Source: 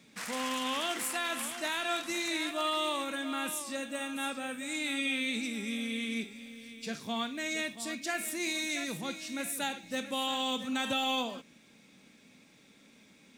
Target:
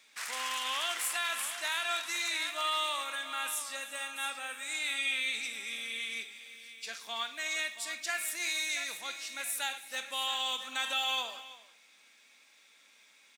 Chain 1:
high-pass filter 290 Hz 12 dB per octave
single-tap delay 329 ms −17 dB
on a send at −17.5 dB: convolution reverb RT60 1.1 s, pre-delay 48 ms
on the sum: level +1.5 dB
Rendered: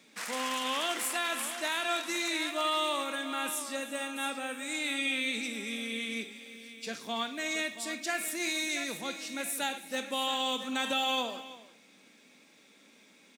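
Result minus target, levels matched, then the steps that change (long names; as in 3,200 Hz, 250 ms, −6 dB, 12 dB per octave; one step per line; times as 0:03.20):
250 Hz band +17.5 dB
change: high-pass filter 1,000 Hz 12 dB per octave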